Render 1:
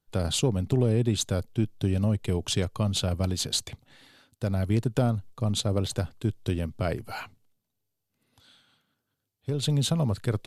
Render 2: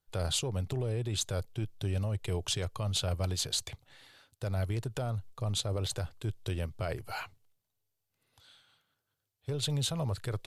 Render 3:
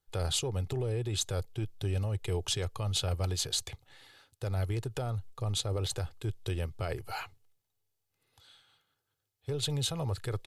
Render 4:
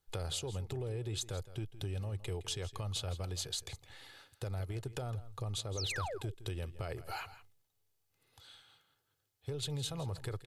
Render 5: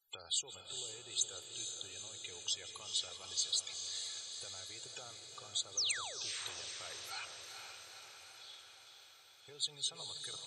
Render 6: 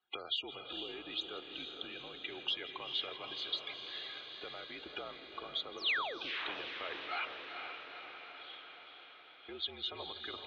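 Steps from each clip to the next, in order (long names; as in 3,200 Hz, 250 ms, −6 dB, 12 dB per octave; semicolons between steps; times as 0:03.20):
brickwall limiter −18.5 dBFS, peak gain reduction 7.5 dB; parametric band 230 Hz −12 dB 1 octave; level −1.5 dB
comb filter 2.4 ms, depth 32%
downward compressor 2.5 to 1, threshold −42 dBFS, peak gain reduction 10.5 dB; sound drawn into the spectrogram fall, 0:05.77–0:06.18, 350–6,800 Hz −42 dBFS; single-tap delay 164 ms −15.5 dB; level +2 dB
spectral peaks only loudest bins 64; first difference; feedback delay with all-pass diffusion 458 ms, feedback 66%, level −6 dB; level +9.5 dB
single-sideband voice off tune −62 Hz 180–3,200 Hz; level +9 dB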